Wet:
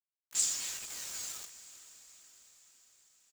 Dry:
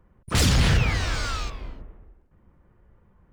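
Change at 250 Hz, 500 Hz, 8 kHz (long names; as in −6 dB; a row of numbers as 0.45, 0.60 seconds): −35.0, −28.0, +0.5 decibels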